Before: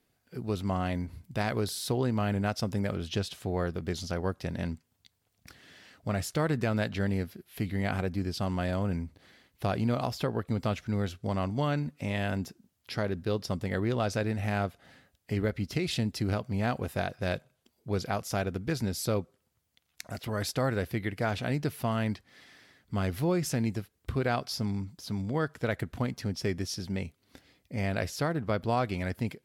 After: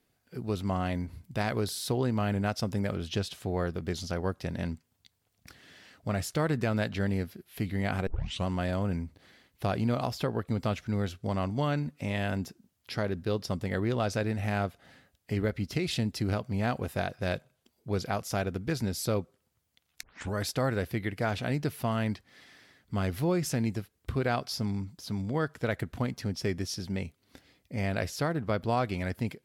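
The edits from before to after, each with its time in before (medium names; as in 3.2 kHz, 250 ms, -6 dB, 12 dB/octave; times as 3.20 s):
8.07 s: tape start 0.39 s
20.03 s: tape start 0.31 s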